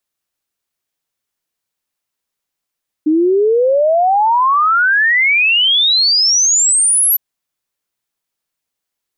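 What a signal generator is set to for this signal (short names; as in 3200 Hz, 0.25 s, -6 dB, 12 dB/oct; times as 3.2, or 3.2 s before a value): log sweep 300 Hz -> 12000 Hz 4.11 s -9 dBFS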